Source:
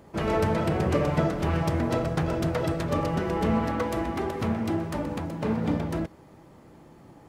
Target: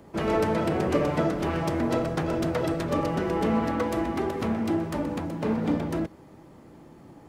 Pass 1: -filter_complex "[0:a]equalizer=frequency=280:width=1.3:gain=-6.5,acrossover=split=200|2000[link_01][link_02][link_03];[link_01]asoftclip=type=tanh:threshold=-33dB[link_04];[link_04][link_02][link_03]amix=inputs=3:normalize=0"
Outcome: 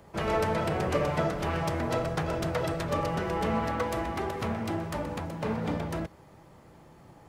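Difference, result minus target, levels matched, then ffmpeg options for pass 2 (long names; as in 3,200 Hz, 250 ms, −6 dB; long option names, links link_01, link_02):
250 Hz band −3.5 dB
-filter_complex "[0:a]equalizer=frequency=280:width=1.3:gain=3.5,acrossover=split=200|2000[link_01][link_02][link_03];[link_01]asoftclip=type=tanh:threshold=-33dB[link_04];[link_04][link_02][link_03]amix=inputs=3:normalize=0"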